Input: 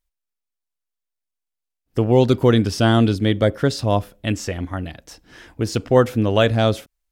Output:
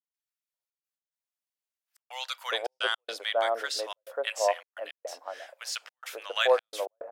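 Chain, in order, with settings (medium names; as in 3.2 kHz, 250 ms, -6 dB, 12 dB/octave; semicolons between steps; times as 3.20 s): elliptic high-pass 550 Hz, stop band 70 dB; bands offset in time highs, lows 540 ms, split 1.1 kHz; trance gate ".xxxx.x.xxxxxx" 107 bpm -60 dB; trim -2 dB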